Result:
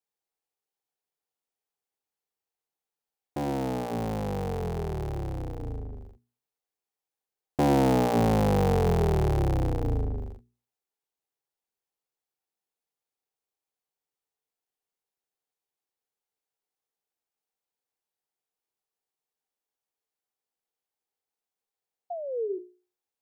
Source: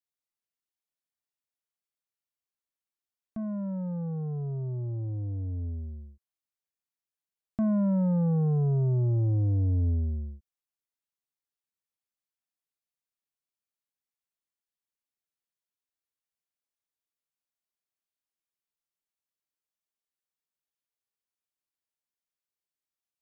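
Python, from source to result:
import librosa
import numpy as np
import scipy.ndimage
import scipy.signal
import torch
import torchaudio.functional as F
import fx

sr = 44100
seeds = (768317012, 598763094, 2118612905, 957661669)

y = fx.cycle_switch(x, sr, every=3, mode='inverted')
y = fx.spec_paint(y, sr, seeds[0], shape='fall', start_s=22.1, length_s=0.49, low_hz=350.0, high_hz=720.0, level_db=-39.0)
y = fx.hum_notches(y, sr, base_hz=60, count=7)
y = fx.small_body(y, sr, hz=(440.0, 770.0), ring_ms=20, db=11)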